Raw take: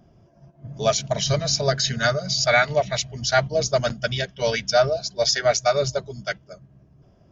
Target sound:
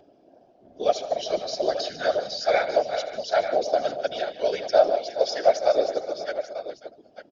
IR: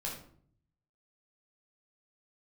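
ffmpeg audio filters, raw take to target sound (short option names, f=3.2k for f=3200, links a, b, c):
-af "acompressor=mode=upward:threshold=-41dB:ratio=2.5,acrusher=bits=10:mix=0:aa=0.000001,highpass=f=270:w=0.5412,highpass=f=270:w=1.3066,equalizer=f=290:t=q:w=4:g=10,equalizer=f=440:t=q:w=4:g=5,equalizer=f=620:t=q:w=4:g=8,equalizer=f=1.1k:t=q:w=4:g=-9,equalizer=f=2k:t=q:w=4:g=-6,lowpass=f=5k:w=0.5412,lowpass=f=5k:w=1.3066,aecho=1:1:79|149|183|413|542|896:0.15|0.188|0.119|0.211|0.133|0.266,afftfilt=real='hypot(re,im)*cos(2*PI*random(0))':imag='hypot(re,im)*sin(2*PI*random(1))':win_size=512:overlap=0.75,volume=-1.5dB"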